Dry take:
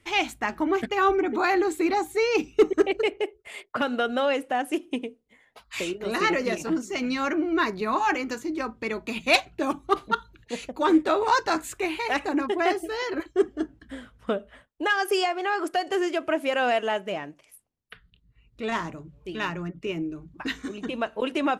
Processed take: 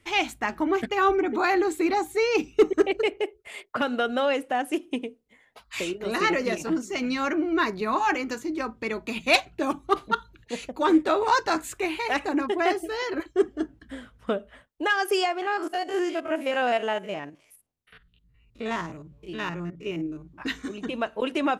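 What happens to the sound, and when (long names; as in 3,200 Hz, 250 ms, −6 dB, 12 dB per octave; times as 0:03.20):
0:15.42–0:20.42: spectrum averaged block by block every 50 ms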